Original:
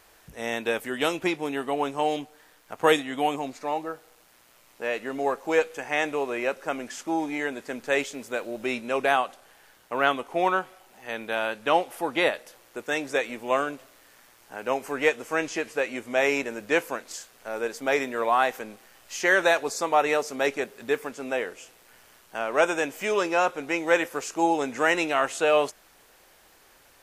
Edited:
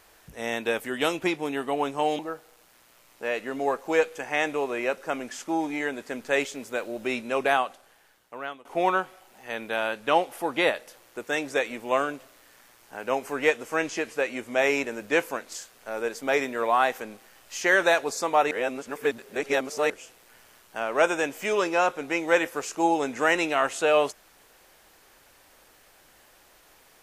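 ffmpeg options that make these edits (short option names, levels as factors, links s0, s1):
-filter_complex "[0:a]asplit=5[s0][s1][s2][s3][s4];[s0]atrim=end=2.192[s5];[s1]atrim=start=3.778:end=10.24,asetpts=PTS-STARTPTS,afade=t=out:st=5.282:d=1.18:silence=0.0841395[s6];[s2]atrim=start=10.24:end=20.102,asetpts=PTS-STARTPTS,afade=t=in:d=0.004:c=hsin:silence=0.0841395[s7];[s3]atrim=start=20.098:end=21.492,asetpts=PTS-STARTPTS,areverse[s8];[s4]atrim=start=21.488[s9];[s6][s7]concat=n=2:v=0:a=1[s10];[s5][s10]acrossfade=d=0.004:c1=hsin:c2=hsin[s11];[s11][s8]acrossfade=d=0.004:c1=hsin:c2=hsin[s12];[s12][s9]acrossfade=d=0.004:c1=hsin:c2=hsin"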